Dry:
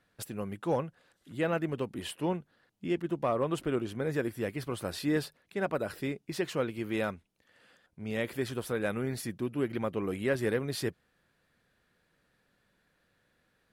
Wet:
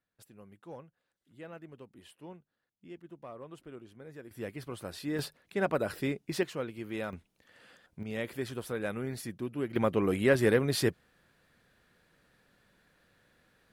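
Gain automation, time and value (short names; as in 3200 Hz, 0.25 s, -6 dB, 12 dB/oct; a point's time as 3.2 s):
-16.5 dB
from 4.31 s -5.5 dB
from 5.19 s +2 dB
from 6.43 s -5 dB
from 7.13 s +4 dB
from 8.03 s -3 dB
from 9.76 s +5 dB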